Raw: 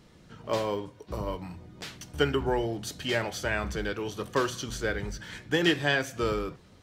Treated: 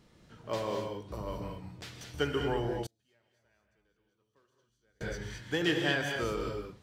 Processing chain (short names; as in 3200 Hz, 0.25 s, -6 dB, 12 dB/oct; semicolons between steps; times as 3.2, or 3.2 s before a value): non-linear reverb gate 0.25 s rising, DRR 3 dB; 2.86–5.01 flipped gate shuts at -28 dBFS, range -38 dB; gain -6 dB